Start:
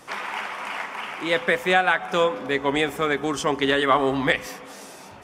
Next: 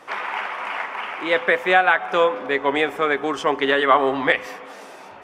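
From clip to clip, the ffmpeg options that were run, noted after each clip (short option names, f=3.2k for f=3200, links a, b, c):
-af "bass=f=250:g=-13,treble=f=4k:g=-13,volume=4dB"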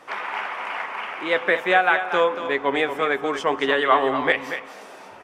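-af "aecho=1:1:234:0.335,volume=-2dB"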